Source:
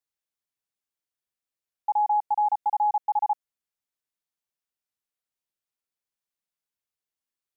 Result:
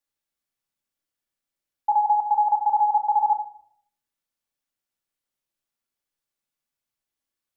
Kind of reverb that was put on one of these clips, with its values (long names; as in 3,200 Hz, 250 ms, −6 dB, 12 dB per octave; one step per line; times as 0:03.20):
rectangular room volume 980 cubic metres, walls furnished, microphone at 2.4 metres
level +1 dB